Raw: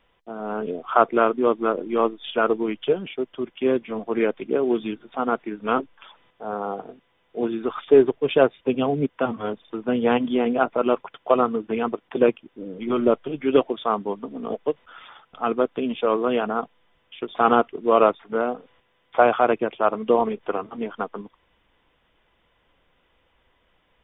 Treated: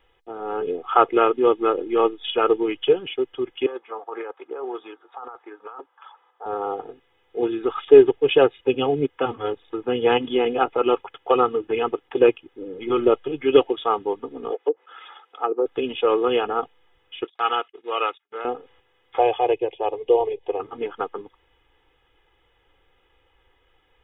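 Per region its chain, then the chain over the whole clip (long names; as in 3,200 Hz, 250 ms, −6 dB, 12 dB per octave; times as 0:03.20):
0:03.66–0:06.46: high-pass filter 920 Hz + high shelf with overshoot 1,600 Hz −11.5 dB, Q 1.5 + compressor whose output falls as the input rises −35 dBFS
0:14.50–0:15.66: treble cut that deepens with the level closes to 520 Hz, closed at −19 dBFS + high-pass filter 320 Hz 24 dB per octave
0:17.24–0:18.45: noise gate −39 dBFS, range −27 dB + resonant band-pass 2,900 Hz, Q 0.72
0:19.19–0:20.60: high-frequency loss of the air 76 metres + phaser with its sweep stopped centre 560 Hz, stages 4
whole clip: comb filter 2.4 ms, depth 80%; dynamic equaliser 2,900 Hz, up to +6 dB, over −46 dBFS, Q 3.3; level −1 dB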